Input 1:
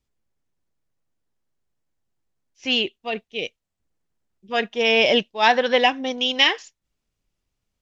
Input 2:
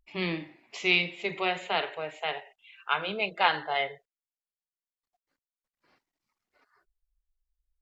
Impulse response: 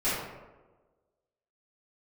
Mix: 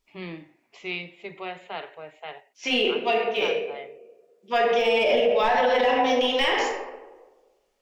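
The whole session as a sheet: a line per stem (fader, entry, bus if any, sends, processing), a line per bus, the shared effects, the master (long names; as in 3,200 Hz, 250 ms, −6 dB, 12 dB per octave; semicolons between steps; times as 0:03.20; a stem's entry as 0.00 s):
+2.0 dB, 0.00 s, send −6 dB, high-pass filter 400 Hz 12 dB per octave; de-essing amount 95%
−5.0 dB, 0.00 s, no send, high-shelf EQ 3,300 Hz −10 dB; automatic ducking −6 dB, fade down 0.25 s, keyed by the first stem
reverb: on, RT60 1.3 s, pre-delay 3 ms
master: brickwall limiter −13 dBFS, peak gain reduction 10.5 dB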